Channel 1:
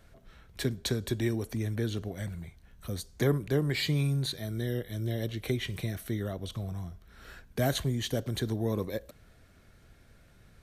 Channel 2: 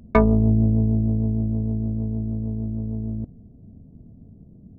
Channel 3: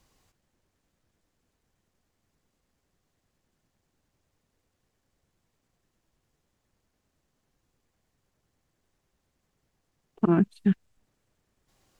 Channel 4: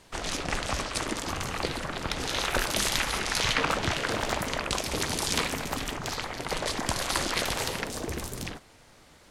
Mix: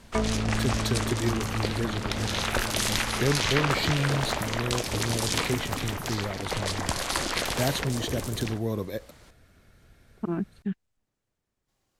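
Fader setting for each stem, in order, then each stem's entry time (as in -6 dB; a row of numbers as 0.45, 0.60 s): +1.0, -11.0, -8.0, 0.0 dB; 0.00, 0.00, 0.00, 0.00 s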